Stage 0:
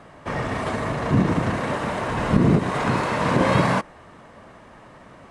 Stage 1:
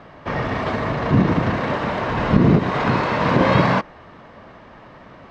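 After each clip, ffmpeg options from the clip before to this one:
-af "lowpass=f=5200:w=0.5412,lowpass=f=5200:w=1.3066,volume=1.41"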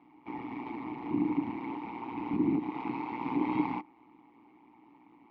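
-filter_complex "[0:a]tremolo=f=120:d=0.889,asplit=3[s0][s1][s2];[s0]bandpass=f=300:t=q:w=8,volume=1[s3];[s1]bandpass=f=870:t=q:w=8,volume=0.501[s4];[s2]bandpass=f=2240:t=q:w=8,volume=0.355[s5];[s3][s4][s5]amix=inputs=3:normalize=0"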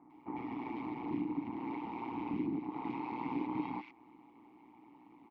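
-filter_complex "[0:a]acompressor=threshold=0.0158:ratio=2.5,acrossover=split=1700[s0][s1];[s1]adelay=100[s2];[s0][s2]amix=inputs=2:normalize=0"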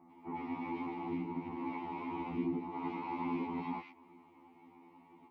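-af "afftfilt=real='re*2*eq(mod(b,4),0)':imag='im*2*eq(mod(b,4),0)':win_size=2048:overlap=0.75,volume=1.5"

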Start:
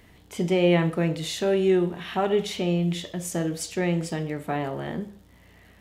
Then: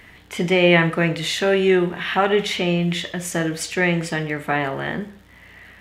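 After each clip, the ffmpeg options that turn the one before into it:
-af "equalizer=f=1900:t=o:w=1.7:g=11,volume=1.41"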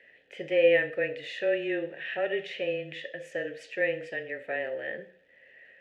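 -filter_complex "[0:a]afreqshift=-18,asplit=3[s0][s1][s2];[s0]bandpass=f=530:t=q:w=8,volume=1[s3];[s1]bandpass=f=1840:t=q:w=8,volume=0.501[s4];[s2]bandpass=f=2480:t=q:w=8,volume=0.355[s5];[s3][s4][s5]amix=inputs=3:normalize=0"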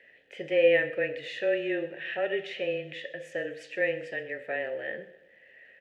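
-af "aecho=1:1:127|254|381|508:0.112|0.0583|0.0303|0.0158"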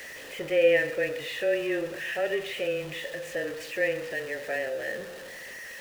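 -af "aeval=exprs='val(0)+0.5*0.0133*sgn(val(0))':c=same"

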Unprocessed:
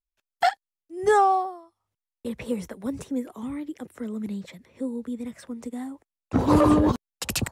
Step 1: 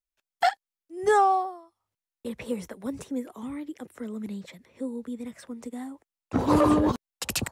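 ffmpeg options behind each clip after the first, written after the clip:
-af "lowshelf=f=210:g=-5,volume=0.891"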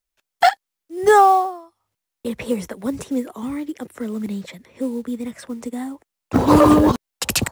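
-af "acrusher=bits=7:mode=log:mix=0:aa=0.000001,volume=2.66"

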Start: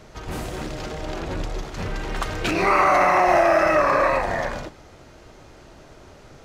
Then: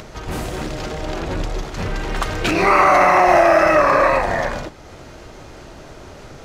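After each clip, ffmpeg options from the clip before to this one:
-af "acompressor=mode=upward:threshold=0.0158:ratio=2.5,volume=1.68"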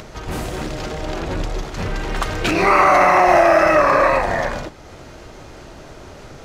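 -af anull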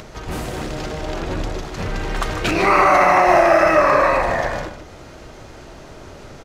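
-filter_complex "[0:a]asplit=2[s0][s1];[s1]adelay=151.6,volume=0.398,highshelf=f=4000:g=-3.41[s2];[s0][s2]amix=inputs=2:normalize=0,volume=0.891"

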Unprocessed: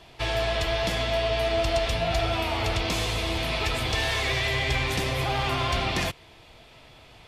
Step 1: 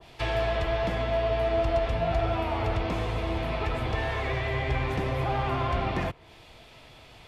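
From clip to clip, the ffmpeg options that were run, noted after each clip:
-filter_complex "[0:a]acrossover=split=290|2800[s0][s1][s2];[s2]acompressor=threshold=0.00631:ratio=10[s3];[s0][s1][s3]amix=inputs=3:normalize=0,adynamicequalizer=threshold=0.00562:dfrequency=1700:dqfactor=0.7:tfrequency=1700:tqfactor=0.7:attack=5:release=100:ratio=0.375:range=3.5:mode=cutabove:tftype=highshelf"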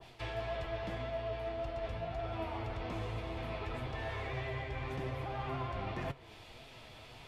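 -af "areverse,acompressor=threshold=0.02:ratio=6,areverse,flanger=delay=7.1:depth=3:regen=59:speed=1.8:shape=triangular,volume=1.26"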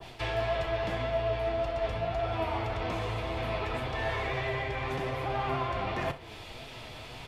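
-filter_complex "[0:a]acrossover=split=380|1200[s0][s1][s2];[s0]alimiter=level_in=5.62:limit=0.0631:level=0:latency=1:release=128,volume=0.178[s3];[s3][s1][s2]amix=inputs=3:normalize=0,aecho=1:1:35|63:0.188|0.158,volume=2.66"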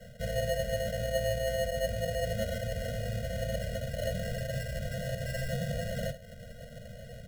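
-af "acrusher=samples=37:mix=1:aa=0.000001,asuperstop=centerf=960:order=12:qfactor=2.2,afftfilt=real='re*eq(mod(floor(b*sr/1024/230),2),0)':imag='im*eq(mod(floor(b*sr/1024/230),2),0)':win_size=1024:overlap=0.75"

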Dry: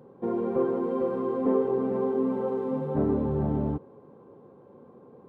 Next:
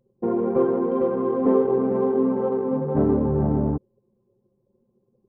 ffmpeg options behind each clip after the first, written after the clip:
-af "anlmdn=10,volume=1.88"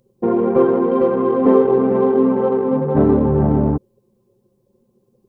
-af "highshelf=f=2100:g=9,volume=2"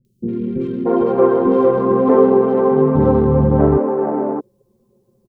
-filter_complex "[0:a]acrossover=split=280|2500[s0][s1][s2];[s2]adelay=50[s3];[s1]adelay=630[s4];[s0][s4][s3]amix=inputs=3:normalize=0,volume=1.41"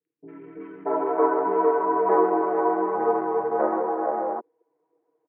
-af "highpass=f=590:t=q:w=0.5412,highpass=f=590:t=q:w=1.307,lowpass=f=2200:t=q:w=0.5176,lowpass=f=2200:t=q:w=0.7071,lowpass=f=2200:t=q:w=1.932,afreqshift=-68"

